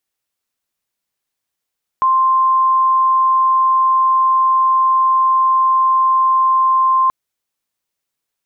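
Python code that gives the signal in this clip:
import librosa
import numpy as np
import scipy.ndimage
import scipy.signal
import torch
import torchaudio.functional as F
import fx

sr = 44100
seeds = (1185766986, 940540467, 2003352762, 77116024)

y = 10.0 ** (-10.0 / 20.0) * np.sin(2.0 * np.pi * (1050.0 * (np.arange(round(5.08 * sr)) / sr)))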